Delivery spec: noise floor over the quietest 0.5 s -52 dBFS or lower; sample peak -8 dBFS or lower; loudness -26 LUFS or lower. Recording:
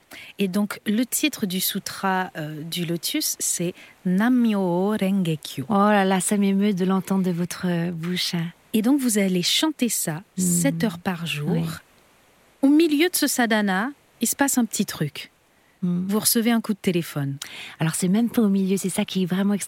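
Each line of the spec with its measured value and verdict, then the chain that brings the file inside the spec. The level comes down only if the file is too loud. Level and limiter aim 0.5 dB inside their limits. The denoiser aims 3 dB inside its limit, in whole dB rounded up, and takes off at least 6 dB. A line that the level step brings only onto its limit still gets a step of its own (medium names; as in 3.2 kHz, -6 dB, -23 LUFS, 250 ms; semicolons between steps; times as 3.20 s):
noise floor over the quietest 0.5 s -60 dBFS: pass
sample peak -5.0 dBFS: fail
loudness -22.5 LUFS: fail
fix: trim -4 dB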